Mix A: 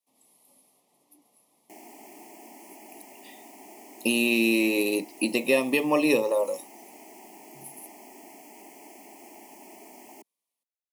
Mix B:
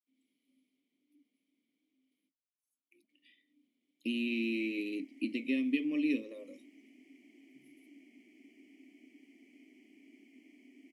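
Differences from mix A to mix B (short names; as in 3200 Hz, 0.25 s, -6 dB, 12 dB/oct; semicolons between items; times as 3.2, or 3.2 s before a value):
background: entry +2.60 s; master: add vowel filter i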